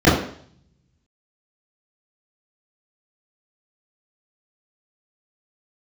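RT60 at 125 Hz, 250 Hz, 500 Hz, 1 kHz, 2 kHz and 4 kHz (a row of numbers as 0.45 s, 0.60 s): 1.1 s, 0.60 s, 0.60 s, 0.55 s, 0.55 s, 0.60 s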